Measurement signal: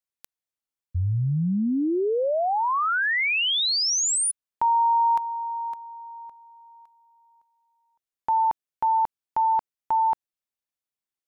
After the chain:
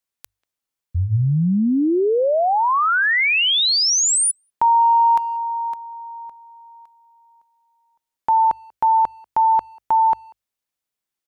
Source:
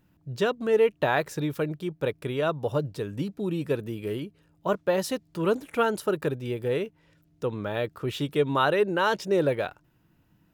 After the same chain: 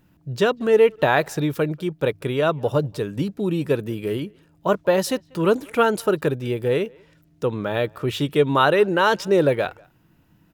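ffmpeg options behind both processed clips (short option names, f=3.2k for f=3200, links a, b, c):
-filter_complex "[0:a]bandreject=f=50:t=h:w=6,bandreject=f=100:t=h:w=6,asplit=2[a][b];[b]adelay=190,highpass=300,lowpass=3.4k,asoftclip=type=hard:threshold=-19.5dB,volume=-27dB[c];[a][c]amix=inputs=2:normalize=0,volume=6dB"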